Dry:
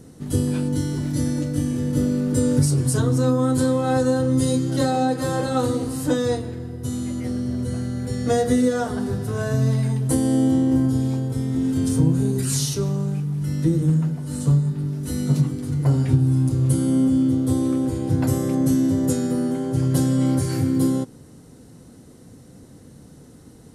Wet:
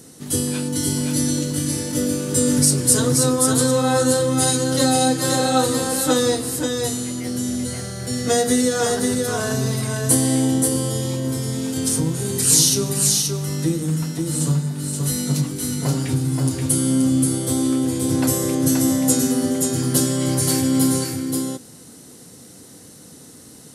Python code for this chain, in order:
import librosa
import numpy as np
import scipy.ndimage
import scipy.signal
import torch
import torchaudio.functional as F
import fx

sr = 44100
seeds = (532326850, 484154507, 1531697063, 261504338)

y = fx.highpass(x, sr, hz=210.0, slope=6)
y = fx.high_shelf(y, sr, hz=2500.0, db=12.0)
y = y + 10.0 ** (-3.5 / 20.0) * np.pad(y, (int(528 * sr / 1000.0), 0))[:len(y)]
y = y * librosa.db_to_amplitude(1.0)